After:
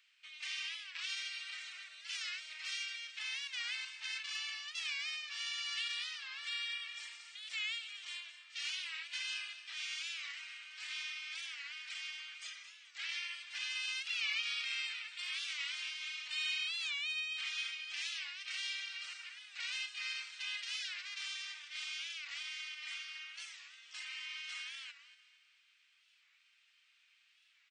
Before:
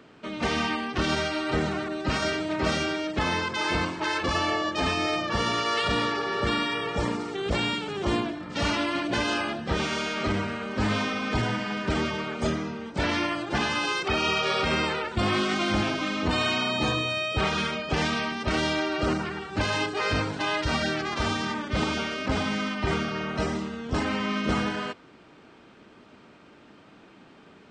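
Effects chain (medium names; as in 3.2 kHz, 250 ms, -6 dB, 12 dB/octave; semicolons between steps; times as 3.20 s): Chebyshev high-pass 2.3 kHz, order 3; feedback delay 223 ms, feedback 42%, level -13.5 dB; warped record 45 rpm, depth 160 cents; trim -7.5 dB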